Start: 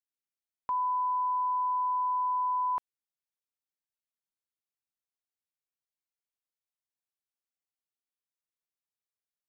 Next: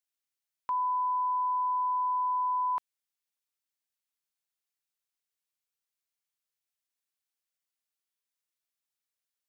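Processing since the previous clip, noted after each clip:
tilt shelving filter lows −5 dB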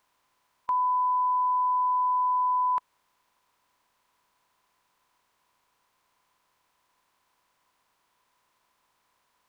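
compressor on every frequency bin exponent 0.6
level +4 dB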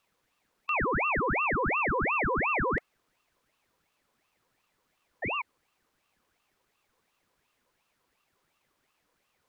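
frequency shifter −250 Hz
sound drawn into the spectrogram fall, 0:05.22–0:05.42, 640–1,300 Hz −28 dBFS
ring modulator whose carrier an LFO sweeps 1,100 Hz, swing 80%, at 2.8 Hz

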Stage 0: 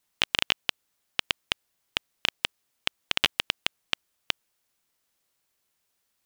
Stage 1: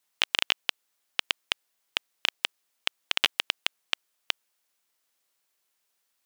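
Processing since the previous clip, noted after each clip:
high-pass filter 450 Hz 6 dB per octave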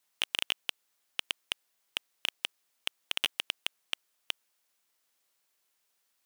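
soft clipping −13.5 dBFS, distortion −9 dB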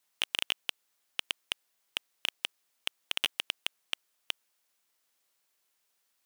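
no processing that can be heard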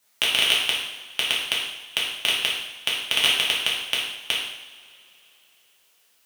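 coupled-rooms reverb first 0.84 s, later 3.4 s, from −20 dB, DRR −5.5 dB
level +7 dB

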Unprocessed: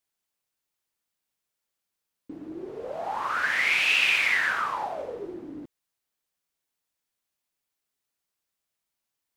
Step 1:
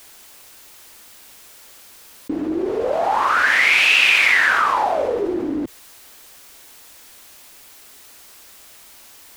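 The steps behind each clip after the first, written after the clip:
parametric band 150 Hz −13.5 dB 0.45 octaves
envelope flattener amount 50%
level +7.5 dB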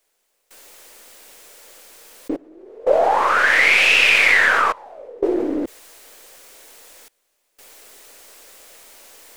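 gain on one half-wave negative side −3 dB
graphic EQ with 10 bands 125 Hz −8 dB, 500 Hz +11 dB, 2,000 Hz +3 dB, 8,000 Hz +3 dB
gate pattern "...xxxxxxxxxxx" 89 BPM −24 dB
level −1 dB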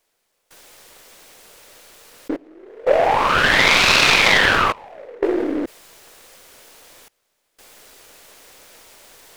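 short delay modulated by noise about 1,200 Hz, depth 0.055 ms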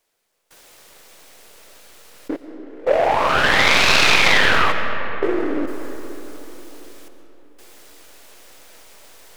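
comb and all-pass reverb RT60 4.2 s, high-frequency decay 0.45×, pre-delay 75 ms, DRR 7 dB
level −1.5 dB

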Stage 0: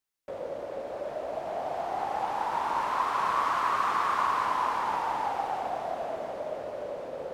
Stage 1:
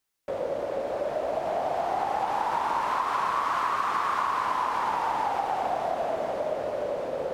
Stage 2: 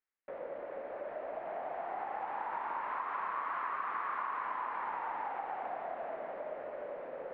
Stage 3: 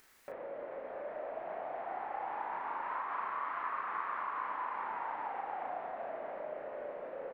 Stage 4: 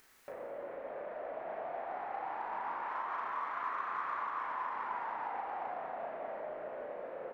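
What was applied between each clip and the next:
downward compressor, threshold −30 dBFS, peak gain reduction 7.5 dB; level +6.5 dB
transistor ladder low-pass 2,400 Hz, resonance 40%; parametric band 88 Hz −14 dB 1.4 octaves; level −4 dB
upward compression, threshold −40 dBFS; double-tracking delay 36 ms −3 dB; level −2.5 dB
in parallel at −11 dB: soft clipping −38.5 dBFS, distortion −11 dB; on the sum: convolution reverb RT60 2.9 s, pre-delay 13 ms, DRR 5.5 dB; level −2.5 dB

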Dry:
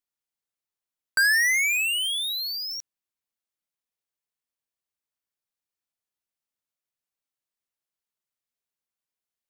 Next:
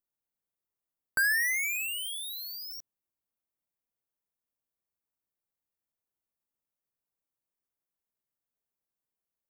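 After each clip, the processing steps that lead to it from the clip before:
parametric band 3,900 Hz −15 dB 2.6 octaves
level +2.5 dB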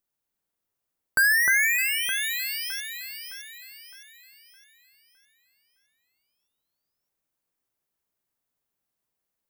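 delay that swaps between a low-pass and a high-pass 306 ms, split 2,300 Hz, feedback 64%, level −3.5 dB
level +6 dB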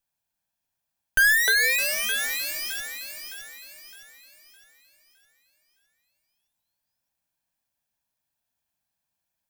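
lower of the sound and its delayed copy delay 1.2 ms
level +2 dB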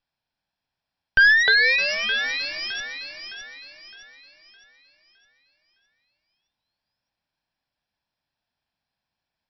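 linear-phase brick-wall low-pass 5,700 Hz
level +4 dB

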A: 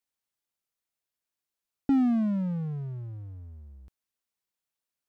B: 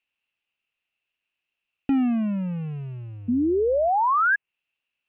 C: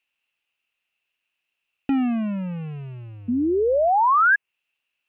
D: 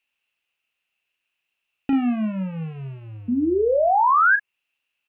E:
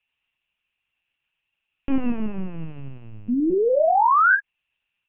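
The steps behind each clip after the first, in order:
sound drawn into the spectrogram rise, 0:03.28–0:04.36, 230–1,700 Hz −23 dBFS; treble cut that deepens with the level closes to 2,000 Hz, closed at −25.5 dBFS; low-pass with resonance 2,700 Hz, resonance Q 11; level +1.5 dB
low-shelf EQ 380 Hz −6 dB; level +4 dB
double-tracking delay 37 ms −8.5 dB
linear-prediction vocoder at 8 kHz pitch kept

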